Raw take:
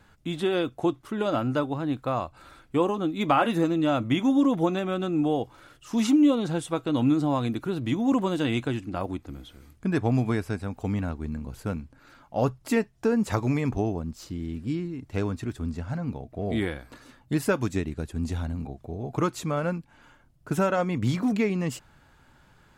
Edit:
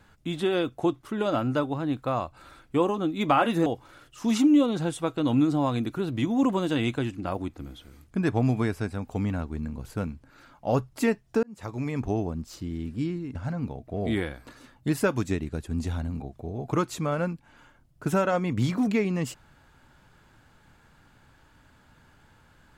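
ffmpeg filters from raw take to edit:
-filter_complex "[0:a]asplit=4[a][b][c][d];[a]atrim=end=3.662[e];[b]atrim=start=5.348:end=13.12,asetpts=PTS-STARTPTS,afade=t=out:st=7.768:d=0.004:c=hsin[f];[c]atrim=start=13.12:end=15.042,asetpts=PTS-STARTPTS,afade=t=in:d=0.77[g];[d]atrim=start=15.798[h];[f][g]concat=n=2:v=0:a=1[i];[e][i]acrossfade=d=0.004:c1=hsin:c2=hsin[j];[j][h]acrossfade=d=0.004:c1=hsin:c2=hsin"

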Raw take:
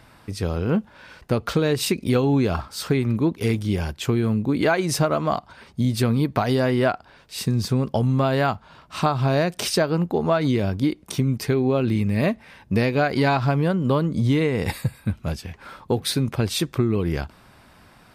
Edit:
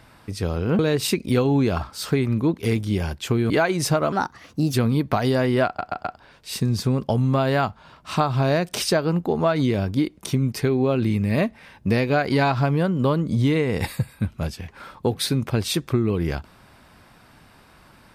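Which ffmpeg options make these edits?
-filter_complex "[0:a]asplit=8[a][b][c][d][e][f][g][h];[a]atrim=end=0.792[i];[b]atrim=start=1.568:end=4.282[j];[c]atrim=start=4.588:end=5.214[k];[d]atrim=start=5.21:end=5.98,asetpts=PTS-STARTPTS,asetrate=55125,aresample=44100[l];[e]atrim=start=5.976:end=7.032[m];[f]atrim=start=6.898:end=7.032[n];[g]atrim=start=6.898:end=7.032[o];[h]atrim=start=6.898[p];[i][j]acrossfade=d=0.004:c1=hsin:c2=hsin[q];[q][k]acrossfade=d=0.004:c1=hsin:c2=hsin[r];[r][l]acrossfade=d=0.004:c1=hsin:c2=hsin[s];[s][m]acrossfade=d=0.004:c1=hsin:c2=hsin[t];[t][n]acrossfade=d=0.004:c1=hsin:c2=hsin[u];[u][o]acrossfade=d=0.004:c1=hsin:c2=hsin[v];[v][p]acrossfade=d=0.004:c1=hsin:c2=hsin"

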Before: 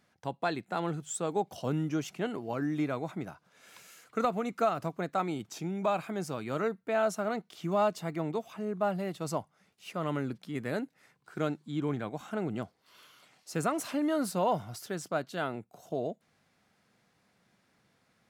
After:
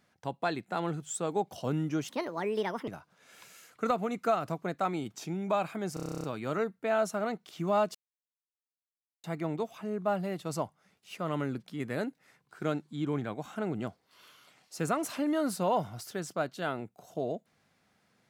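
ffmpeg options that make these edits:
-filter_complex "[0:a]asplit=14[a][b][c][d][e][f][g][h][i][j][k][l][m][n];[a]atrim=end=2.084[o];[b]atrim=start=2.08:end=3.22,asetpts=PTS-STARTPTS,asetrate=63063,aresample=44100[p];[c]atrim=start=3.216:end=6.312[q];[d]atrim=start=6.278:end=6.312[r];[e]atrim=start=6.278:end=6.312[s];[f]atrim=start=6.278:end=6.312[t];[g]atrim=start=6.278:end=6.312[u];[h]atrim=start=6.278:end=6.312[v];[i]atrim=start=6.278:end=6.312[w];[j]atrim=start=6.278:end=6.312[x];[k]atrim=start=6.278:end=6.312[y];[l]atrim=start=6.278:end=6.312[z];[m]atrim=start=6.278:end=7.99,asetpts=PTS-STARTPTS,afade=t=out:st=1.708:d=0.004:c=hsin,apad=pad_dur=1.29[aa];[n]atrim=start=7.99,asetpts=PTS-STARTPTS,afade=t=in:d=0.004:c=hsin[ab];[o][p]acrossfade=d=0.004:c1=hsin:c2=hsin[ac];[ac][q]acrossfade=d=0.004:c1=hsin:c2=hsin[ad];[ad][r]acrossfade=d=0.004:c1=hsin:c2=hsin[ae];[ae][s]acrossfade=d=0.004:c1=hsin:c2=hsin[af];[af][t]acrossfade=d=0.004:c1=hsin:c2=hsin[ag];[ag][u]acrossfade=d=0.004:c1=hsin:c2=hsin[ah];[ah][v]acrossfade=d=0.004:c1=hsin:c2=hsin[ai];[ai][w]acrossfade=d=0.004:c1=hsin:c2=hsin[aj];[aj][x]acrossfade=d=0.004:c1=hsin:c2=hsin[ak];[ak][y]acrossfade=d=0.004:c1=hsin:c2=hsin[al];[al][z]acrossfade=d=0.004:c1=hsin:c2=hsin[am];[aa][ab]concat=n=2:v=0:a=1[an];[am][an]acrossfade=d=0.004:c1=hsin:c2=hsin"

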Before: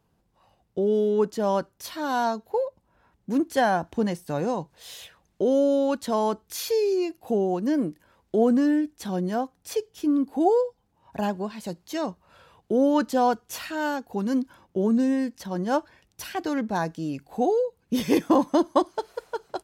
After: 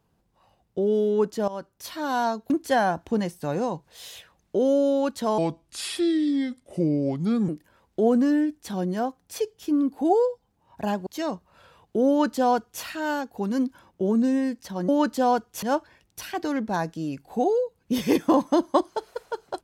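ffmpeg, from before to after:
-filter_complex "[0:a]asplit=8[a][b][c][d][e][f][g][h];[a]atrim=end=1.48,asetpts=PTS-STARTPTS,afade=t=out:st=1.476:d=0.004:c=hsin:silence=0.158489[i];[b]atrim=start=1.48:end=2.502,asetpts=PTS-STARTPTS,afade=t=in:d=0.41:silence=0.158489[j];[c]atrim=start=3.358:end=6.244[k];[d]atrim=start=6.24:end=7.84,asetpts=PTS-STARTPTS,asetrate=33516,aresample=44100,atrim=end_sample=92842,asetpts=PTS-STARTPTS[l];[e]atrim=start=7.836:end=11.422[m];[f]atrim=start=11.818:end=15.642[n];[g]atrim=start=12.838:end=13.582[o];[h]atrim=start=15.638[p];[i][j]concat=n=2:v=0:a=1[q];[q][k]acrossfade=d=0.004:c1=hsin:c2=hsin[r];[r][l]acrossfade=d=0.004:c1=hsin:c2=hsin[s];[s][m]acrossfade=d=0.004:c1=hsin:c2=hsin[t];[t][n]acrossfade=d=0.004:c1=hsin:c2=hsin[u];[u][o]acrossfade=d=0.004:c1=hsin:c2=hsin[v];[v][p]acrossfade=d=0.004:c1=hsin:c2=hsin"

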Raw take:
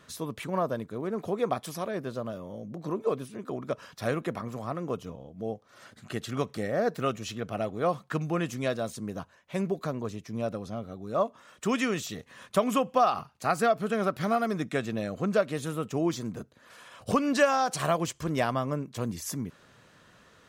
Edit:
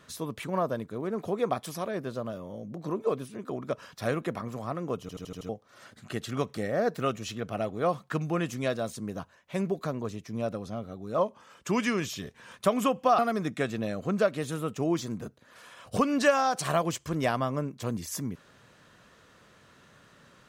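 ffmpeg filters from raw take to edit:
-filter_complex "[0:a]asplit=10[a][b][c][d][e][f][g][h][i][j];[a]atrim=end=5.092[k];[b]atrim=start=5.008:end=5.092[l];[c]atrim=start=5.008:end=5.092[m];[d]atrim=start=5.008:end=5.092[n];[e]atrim=start=5.008:end=5.092[o];[f]atrim=start=5.008:end=5.092[p];[g]atrim=start=5.488:end=11.184[q];[h]atrim=start=11.18:end=12.44,asetpts=PTS-STARTPTS,asetrate=41013,aresample=44100,atrim=end_sample=59748,asetpts=PTS-STARTPTS[r];[i]atrim=start=12.436:end=13.092[s];[j]atrim=start=14.328[t];[k][l]acrossfade=d=0.004:c1=hsin:c2=hsin[u];[u][m]acrossfade=d=0.004:c1=hsin:c2=hsin[v];[v][n]acrossfade=d=0.004:c1=hsin:c2=hsin[w];[w][o]acrossfade=d=0.004:c1=hsin:c2=hsin[x];[x][p]acrossfade=d=0.004:c1=hsin:c2=hsin[y];[y][q]acrossfade=d=0.004:c1=hsin:c2=hsin[z];[z][r]acrossfade=d=0.004:c1=hsin:c2=hsin[aa];[aa][s]acrossfade=d=0.004:c1=hsin:c2=hsin[ab];[ab][t]acrossfade=d=0.004:c1=hsin:c2=hsin"

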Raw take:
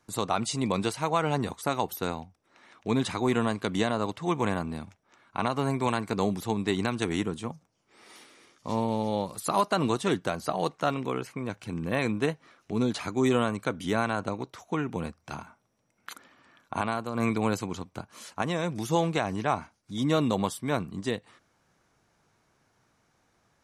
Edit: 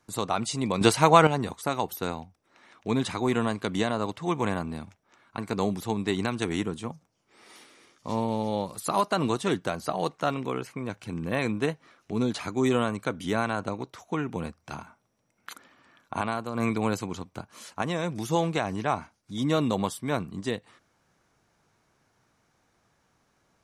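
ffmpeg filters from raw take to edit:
-filter_complex "[0:a]asplit=4[a][b][c][d];[a]atrim=end=0.812[e];[b]atrim=start=0.808:end=1.272,asetpts=PTS-STARTPTS,volume=9.5dB[f];[c]atrim=start=1.268:end=5.382[g];[d]atrim=start=5.978[h];[e][f]acrossfade=d=0.004:c1=hsin:c2=hsin[i];[i][g]acrossfade=d=0.004:c1=hsin:c2=hsin[j];[j][h]acrossfade=d=0.004:c1=hsin:c2=hsin"

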